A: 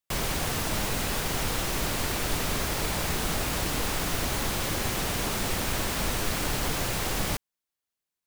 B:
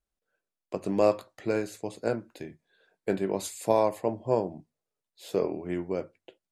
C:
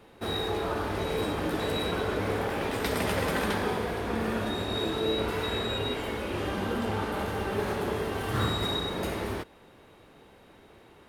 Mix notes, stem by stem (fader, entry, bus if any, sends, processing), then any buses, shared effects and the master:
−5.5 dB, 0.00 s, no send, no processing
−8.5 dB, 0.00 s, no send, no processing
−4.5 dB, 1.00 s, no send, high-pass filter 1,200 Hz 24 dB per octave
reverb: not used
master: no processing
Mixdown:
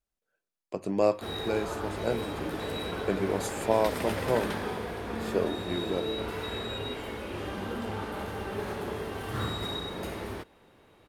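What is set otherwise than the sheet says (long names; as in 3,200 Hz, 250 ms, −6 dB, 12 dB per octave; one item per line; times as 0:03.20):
stem A: muted
stem B −8.5 dB → −1.5 dB
stem C: missing high-pass filter 1,200 Hz 24 dB per octave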